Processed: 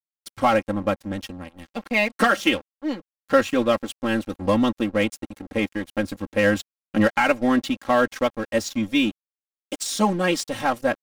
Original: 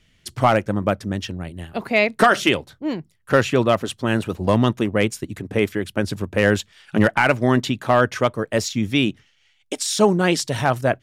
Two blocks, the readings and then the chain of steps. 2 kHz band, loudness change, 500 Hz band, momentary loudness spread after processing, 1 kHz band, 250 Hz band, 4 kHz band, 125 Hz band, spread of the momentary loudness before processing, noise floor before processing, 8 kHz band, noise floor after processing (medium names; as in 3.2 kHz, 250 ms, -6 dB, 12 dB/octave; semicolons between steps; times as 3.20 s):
-2.5 dB, -2.5 dB, -3.0 dB, 11 LU, -2.5 dB, -1.5 dB, -3.0 dB, -9.5 dB, 11 LU, -61 dBFS, -4.0 dB, under -85 dBFS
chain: crossover distortion -33.5 dBFS; comb 3.7 ms, depth 88%; trim -4 dB